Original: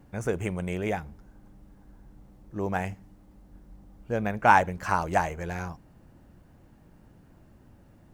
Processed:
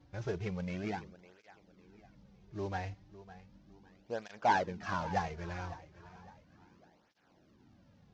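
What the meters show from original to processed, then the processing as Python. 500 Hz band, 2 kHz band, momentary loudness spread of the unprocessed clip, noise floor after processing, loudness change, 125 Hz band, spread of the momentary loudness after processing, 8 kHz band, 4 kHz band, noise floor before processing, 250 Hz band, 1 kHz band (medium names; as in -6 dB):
-9.0 dB, -10.5 dB, 18 LU, -67 dBFS, -9.5 dB, -7.5 dB, 24 LU, -10.5 dB, -3.5 dB, -56 dBFS, -8.5 dB, -9.5 dB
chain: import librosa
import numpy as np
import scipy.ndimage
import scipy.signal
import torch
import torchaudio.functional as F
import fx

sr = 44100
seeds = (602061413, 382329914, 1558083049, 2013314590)

p1 = fx.cvsd(x, sr, bps=32000)
p2 = p1 + fx.echo_feedback(p1, sr, ms=556, feedback_pct=40, wet_db=-16.5, dry=0)
p3 = fx.flanger_cancel(p2, sr, hz=0.35, depth_ms=5.0)
y = p3 * 10.0 ** (-5.0 / 20.0)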